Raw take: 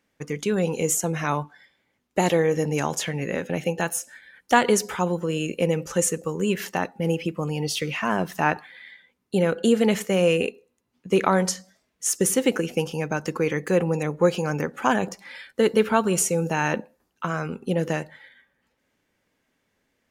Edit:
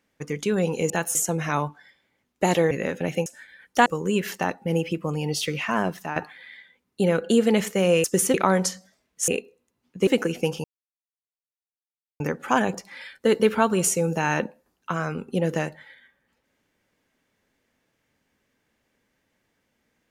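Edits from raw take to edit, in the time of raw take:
2.46–3.2 cut
3.75–4 move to 0.9
4.6–6.2 cut
8.16–8.5 fade out, to -13.5 dB
10.38–11.17 swap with 12.11–12.41
12.98–14.54 mute

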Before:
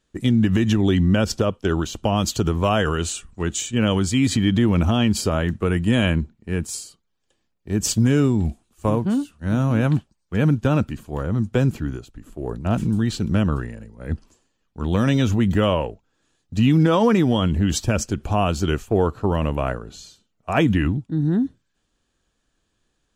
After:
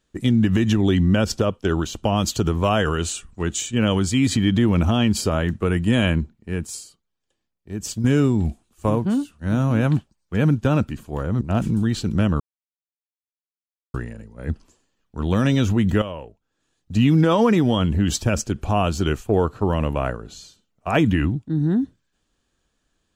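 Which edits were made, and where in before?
6.22–8.04 fade out quadratic, to -8 dB
11.41–12.57 cut
13.56 insert silence 1.54 s
15.64–16.57 fade in quadratic, from -12 dB

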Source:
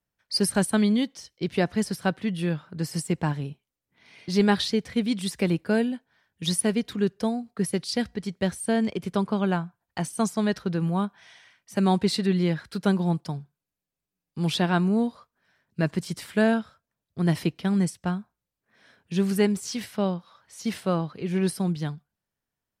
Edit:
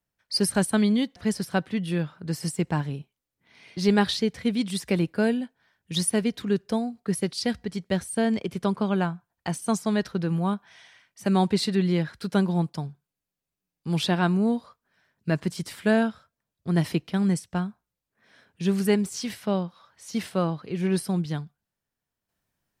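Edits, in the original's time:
1.16–1.67 cut

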